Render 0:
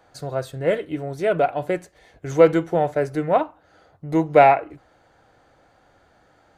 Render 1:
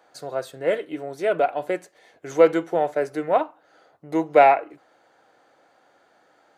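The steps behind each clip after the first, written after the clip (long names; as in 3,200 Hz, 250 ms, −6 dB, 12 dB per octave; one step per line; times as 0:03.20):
high-pass filter 290 Hz 12 dB per octave
level −1 dB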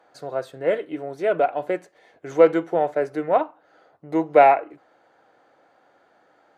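high-shelf EQ 4,000 Hz −10.5 dB
level +1 dB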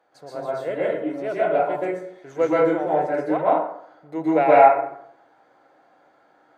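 dense smooth reverb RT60 0.69 s, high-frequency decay 0.55×, pre-delay 110 ms, DRR −7.5 dB
level −7.5 dB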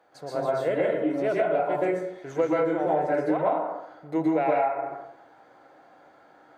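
low-shelf EQ 120 Hz +5.5 dB
downward compressor 16 to 1, threshold −23 dBFS, peak gain reduction 16.5 dB
level +3 dB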